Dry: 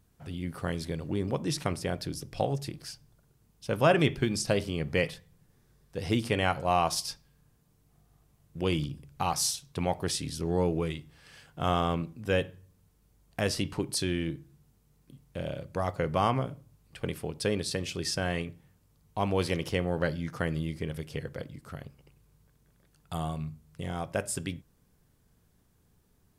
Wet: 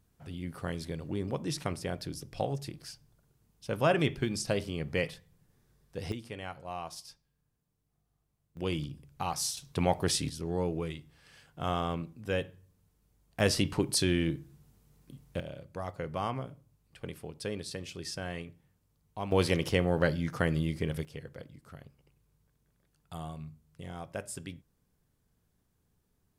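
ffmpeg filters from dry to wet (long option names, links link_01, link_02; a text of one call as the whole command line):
ffmpeg -i in.wav -af "asetnsamples=nb_out_samples=441:pad=0,asendcmd='6.12 volume volume -14dB;8.57 volume volume -4.5dB;9.57 volume volume 2dB;10.29 volume volume -4.5dB;13.4 volume volume 2.5dB;15.4 volume volume -7.5dB;19.32 volume volume 2dB;21.05 volume volume -7.5dB',volume=-3.5dB" out.wav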